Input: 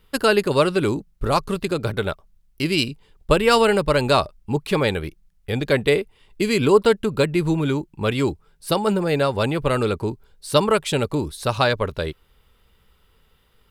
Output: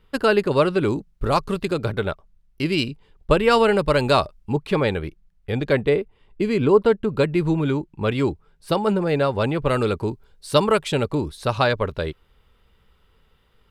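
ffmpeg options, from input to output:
-af "asetnsamples=n=441:p=0,asendcmd='0.9 lowpass f 5400;1.86 lowpass f 3000;3.79 lowpass f 6600;4.53 lowpass f 2500;5.81 lowpass f 1200;7.1 lowpass f 2700;9.69 lowpass f 6700;10.88 lowpass f 3800',lowpass=f=2.6k:p=1"

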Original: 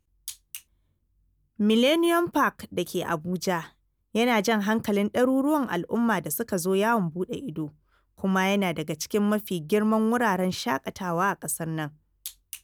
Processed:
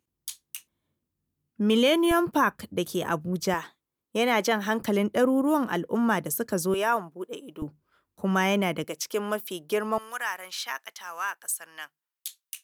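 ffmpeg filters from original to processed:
-af "asetnsamples=n=441:p=0,asendcmd='2.11 highpass f 69;3.54 highpass f 270;4.82 highpass f 120;6.74 highpass f 460;7.62 highpass f 140;8.84 highpass f 400;9.98 highpass f 1500',highpass=170"

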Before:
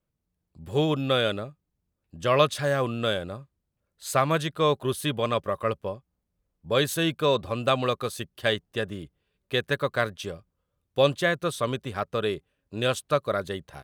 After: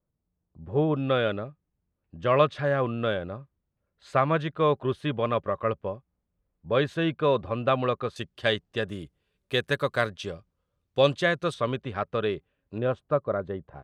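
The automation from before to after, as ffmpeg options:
-af "asetnsamples=n=441:p=0,asendcmd='0.95 lowpass f 2300;8.16 lowpass f 5800;8.89 lowpass f 12000;10.06 lowpass f 6100;11.54 lowpass f 3100;12.78 lowpass f 1100',lowpass=1.2k"

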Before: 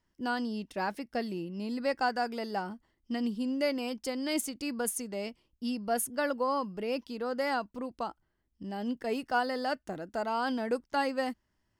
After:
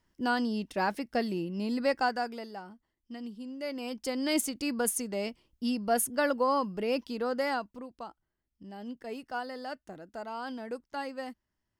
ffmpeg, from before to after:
-af "volume=15.5dB,afade=t=out:st=1.8:d=0.76:silence=0.237137,afade=t=in:st=3.6:d=0.65:silence=0.251189,afade=t=out:st=7.22:d=0.66:silence=0.316228"

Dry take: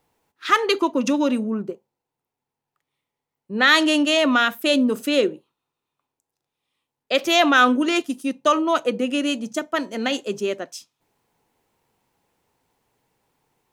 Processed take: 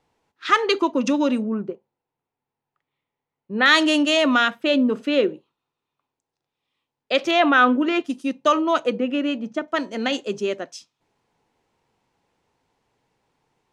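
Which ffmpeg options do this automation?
-af "asetnsamples=n=441:p=0,asendcmd='1.42 lowpass f 3200;3.66 lowpass f 8400;4.5 lowpass f 3200;5.29 lowpass f 5400;7.31 lowpass f 2700;8.05 lowpass f 6000;8.99 lowpass f 2500;9.68 lowpass f 6500',lowpass=6.6k"

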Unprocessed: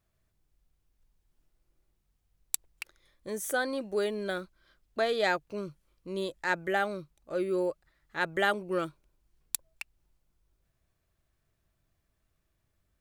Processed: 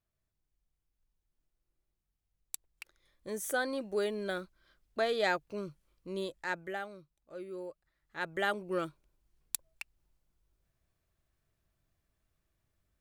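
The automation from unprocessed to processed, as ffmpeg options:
-af "volume=7.5dB,afade=t=in:st=2.68:d=0.64:silence=0.421697,afade=t=out:st=6.1:d=0.79:silence=0.298538,afade=t=in:st=7.69:d=1.06:silence=0.316228"

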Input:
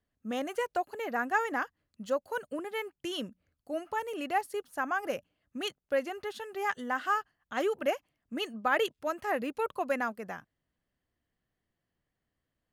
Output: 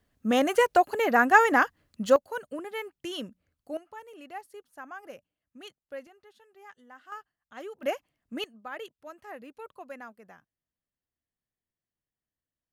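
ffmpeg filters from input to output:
-af "asetnsamples=n=441:p=0,asendcmd='2.16 volume volume 0dB;3.77 volume volume -11dB;6.07 volume volume -18.5dB;7.12 volume volume -11dB;7.83 volume volume 0dB;8.44 volume volume -12dB',volume=10.5dB"

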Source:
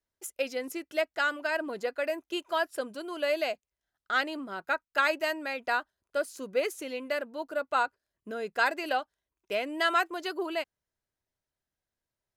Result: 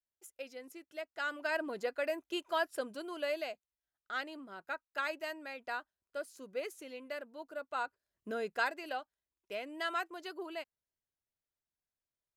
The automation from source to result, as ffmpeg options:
-af "volume=5.5dB,afade=t=in:st=1.09:d=0.42:silence=0.316228,afade=t=out:st=2.99:d=0.53:silence=0.473151,afade=t=in:st=7.77:d=0.57:silence=0.334965,afade=t=out:st=8.34:d=0.39:silence=0.354813"

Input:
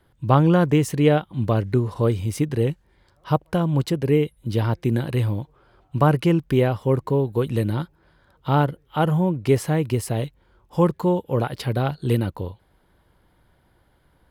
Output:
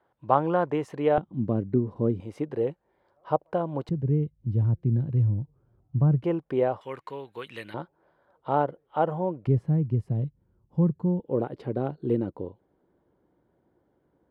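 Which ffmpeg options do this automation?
-af "asetnsamples=n=441:p=0,asendcmd='1.18 bandpass f 250;2.2 bandpass f 620;3.89 bandpass f 120;6.24 bandpass f 660;6.81 bandpass f 2200;7.74 bandpass f 630;9.47 bandpass f 140;11.2 bandpass f 350',bandpass=f=780:t=q:w=1.3:csg=0"

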